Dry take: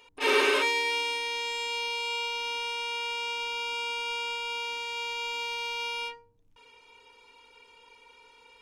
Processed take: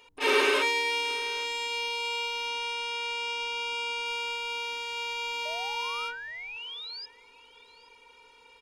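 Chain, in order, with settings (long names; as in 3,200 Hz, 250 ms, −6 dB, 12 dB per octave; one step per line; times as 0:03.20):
0:02.47–0:04.06: low-pass filter 11,000 Hz 12 dB per octave
0:05.45–0:07.06: sound drawn into the spectrogram rise 600–5,100 Hz −40 dBFS
single-tap delay 820 ms −22.5 dB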